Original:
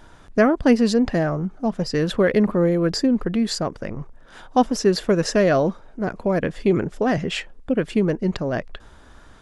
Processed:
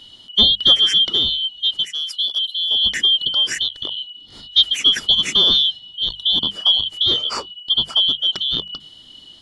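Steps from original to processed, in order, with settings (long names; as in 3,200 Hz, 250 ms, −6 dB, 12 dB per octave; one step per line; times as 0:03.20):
band-splitting scrambler in four parts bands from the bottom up 2413
0:01.85–0:02.71: first difference
mains-hum notches 50/100/150/200 Hz
level +2.5 dB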